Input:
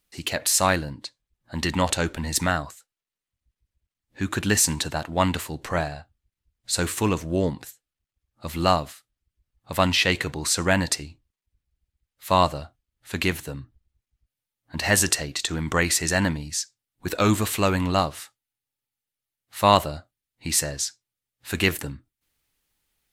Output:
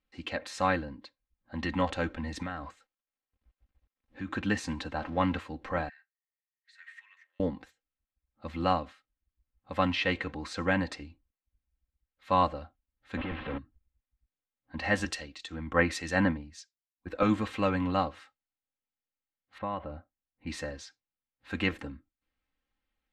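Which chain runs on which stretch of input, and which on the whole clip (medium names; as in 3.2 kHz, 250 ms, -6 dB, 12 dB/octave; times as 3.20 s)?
2.42–4.28 s: companding laws mixed up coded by mu + compression 3:1, threshold -28 dBFS
4.98–5.39 s: jump at every zero crossing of -34.5 dBFS + peaking EQ 13 kHz -6 dB 1.6 oct
5.89–7.40 s: compression 5:1, threshold -30 dBFS + ladder high-pass 1.8 kHz, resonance 85%
13.17–13.58 s: one-bit comparator + steep low-pass 3.5 kHz
15.05–17.23 s: treble shelf 12 kHz +9 dB + three bands expanded up and down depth 100%
19.58–20.47 s: distance through air 460 m + compression 2.5:1, threshold -28 dBFS
whole clip: low-pass 2.5 kHz 12 dB/octave; comb 3.8 ms, depth 63%; trim -7 dB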